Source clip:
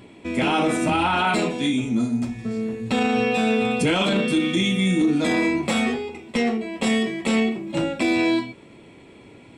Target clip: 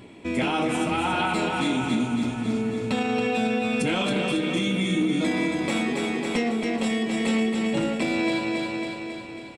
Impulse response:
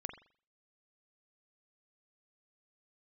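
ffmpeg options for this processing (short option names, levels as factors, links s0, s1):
-filter_complex "[0:a]asplit=2[s0][s1];[s1]aecho=0:1:274|548|822|1096|1370|1644|1918|2192:0.531|0.319|0.191|0.115|0.0688|0.0413|0.0248|0.0149[s2];[s0][s2]amix=inputs=2:normalize=0,alimiter=limit=0.178:level=0:latency=1:release=460"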